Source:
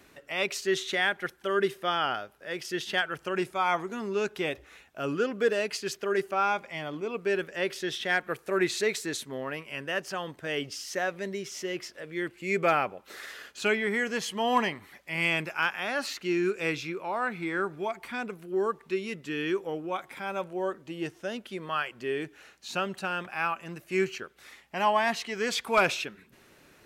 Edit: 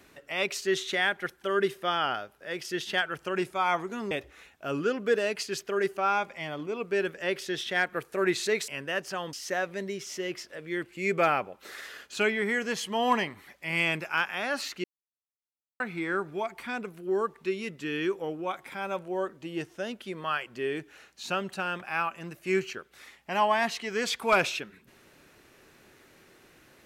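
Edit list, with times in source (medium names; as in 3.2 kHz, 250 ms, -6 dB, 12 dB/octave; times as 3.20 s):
4.11–4.45 s: delete
9.02–9.68 s: delete
10.33–10.78 s: delete
16.29–17.25 s: mute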